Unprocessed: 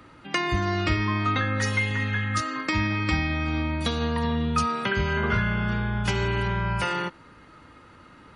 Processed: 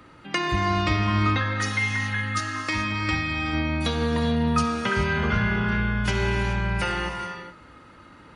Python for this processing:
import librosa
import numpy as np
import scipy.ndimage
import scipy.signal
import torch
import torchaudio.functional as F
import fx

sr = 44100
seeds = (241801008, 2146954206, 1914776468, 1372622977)

y = fx.low_shelf(x, sr, hz=480.0, db=-6.0, at=(1.37, 3.53))
y = fx.rev_gated(y, sr, seeds[0], gate_ms=460, shape='flat', drr_db=4.0)